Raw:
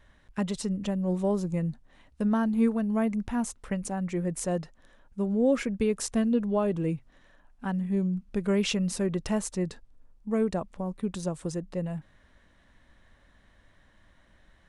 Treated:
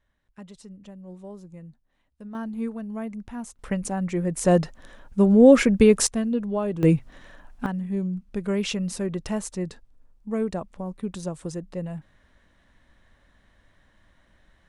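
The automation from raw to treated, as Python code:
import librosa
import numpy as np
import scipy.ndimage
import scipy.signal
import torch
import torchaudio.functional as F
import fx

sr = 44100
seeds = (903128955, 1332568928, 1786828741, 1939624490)

y = fx.gain(x, sr, db=fx.steps((0.0, -14.0), (2.35, -6.0), (3.59, 4.0), (4.45, 11.0), (6.07, 0.0), (6.83, 11.5), (7.66, 0.0)))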